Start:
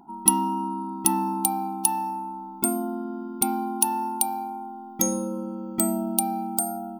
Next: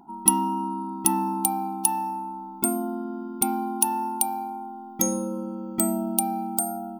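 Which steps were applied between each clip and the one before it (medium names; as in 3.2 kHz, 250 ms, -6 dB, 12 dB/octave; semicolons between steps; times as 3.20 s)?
dynamic bell 4.3 kHz, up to -4 dB, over -50 dBFS, Q 2.6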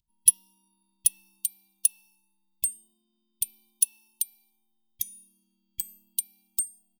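elliptic band-stop 120–3100 Hz, stop band 40 dB; comb 3 ms, depth 90%; upward expansion 1.5:1, over -32 dBFS; trim -1 dB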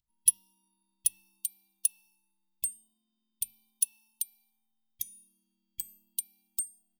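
hum notches 50/100/150/200/250/300/350 Hz; trim -5 dB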